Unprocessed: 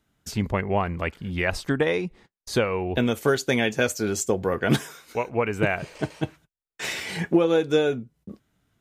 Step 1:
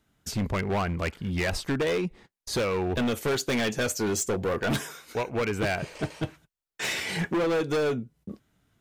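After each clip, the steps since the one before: hard clip -24 dBFS, distortion -6 dB; gain +1 dB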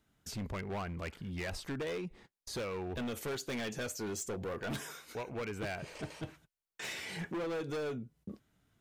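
limiter -30 dBFS, peak gain reduction 7 dB; gain -4.5 dB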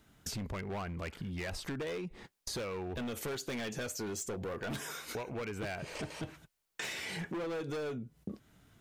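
compressor 5:1, threshold -48 dBFS, peak gain reduction 11 dB; gain +10 dB

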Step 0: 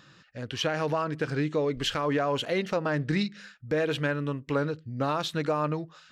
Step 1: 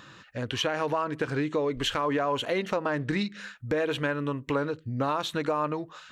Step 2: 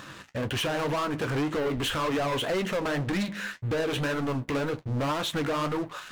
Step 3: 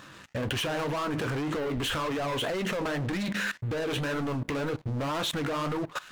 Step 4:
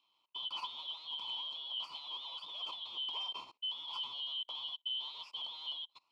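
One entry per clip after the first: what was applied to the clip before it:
thirty-one-band EQ 160 Hz -8 dB, 1000 Hz +5 dB, 5000 Hz -7 dB; compressor 2:1, threshold -36 dBFS, peak gain reduction 8 dB; gain +6.5 dB
bell 4800 Hz -5.5 dB 0.76 oct; sample leveller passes 5; flange 1.9 Hz, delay 8.9 ms, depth 8.2 ms, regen -49%; gain -6 dB
level quantiser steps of 19 dB; gain +8 dB
four-band scrambler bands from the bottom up 2413; double band-pass 1600 Hz, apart 1.4 oct; upward expander 2.5:1, over -50 dBFS; gain +2.5 dB

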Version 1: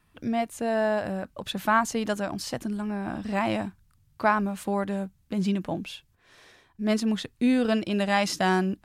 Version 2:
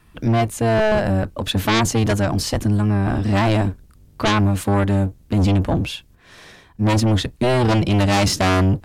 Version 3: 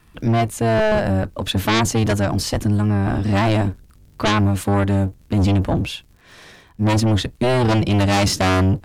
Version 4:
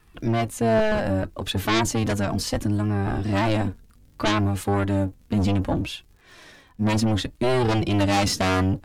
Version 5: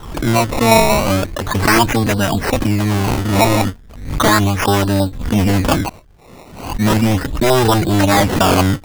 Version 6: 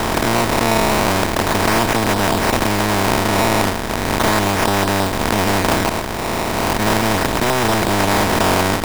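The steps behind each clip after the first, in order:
octaver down 1 oct, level +3 dB; sine folder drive 11 dB, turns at -8 dBFS; gain -4.5 dB
crackle 62/s -43 dBFS
flange 0.65 Hz, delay 2.3 ms, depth 2.2 ms, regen +52%
LFO low-pass saw up 5.6 Hz 840–3200 Hz; decimation with a swept rate 19×, swing 100% 0.36 Hz; backwards sustainer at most 75 dB/s; gain +7 dB
per-bin compression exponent 0.2; gain -11 dB

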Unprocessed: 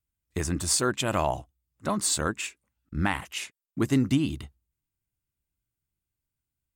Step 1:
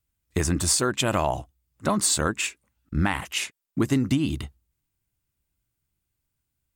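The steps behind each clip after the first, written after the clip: compressor, threshold -25 dBFS, peak gain reduction 7 dB; gain +6.5 dB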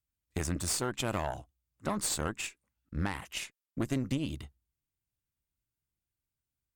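tube stage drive 15 dB, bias 0.75; gain -6 dB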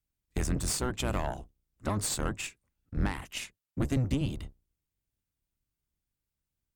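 octaver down 1 oct, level +3 dB

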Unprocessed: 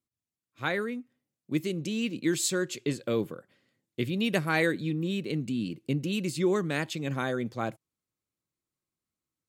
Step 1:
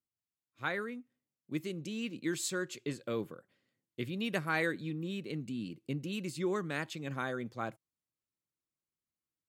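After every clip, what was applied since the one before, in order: dynamic EQ 1300 Hz, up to +5 dB, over -44 dBFS, Q 1.1; gain -8 dB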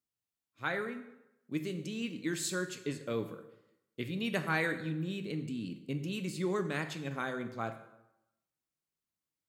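plate-style reverb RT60 0.88 s, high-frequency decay 0.75×, DRR 7 dB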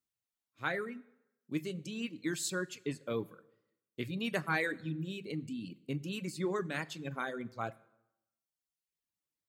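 reverb removal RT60 1.2 s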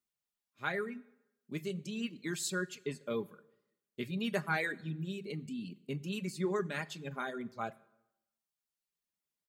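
comb 4.9 ms, depth 51%; gain -1.5 dB

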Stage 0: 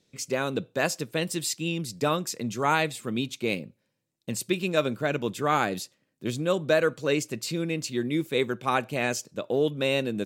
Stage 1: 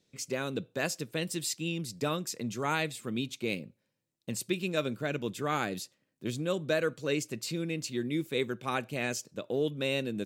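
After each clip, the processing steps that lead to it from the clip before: dynamic EQ 880 Hz, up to -5 dB, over -38 dBFS, Q 0.93; gain -4 dB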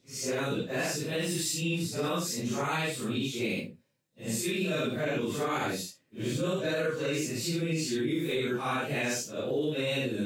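phase scrambler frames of 0.2 s; limiter -26 dBFS, peak gain reduction 8 dB; gain +4.5 dB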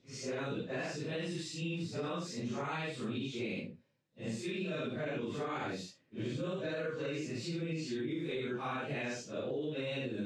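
compressor 3:1, threshold -36 dBFS, peak gain reduction 8 dB; air absorption 120 m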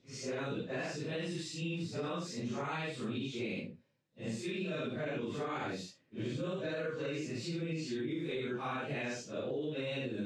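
nothing audible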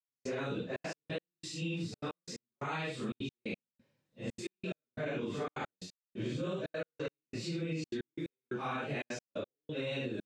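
step gate "...xxxxxx.x..x" 178 bpm -60 dB; gain +1 dB

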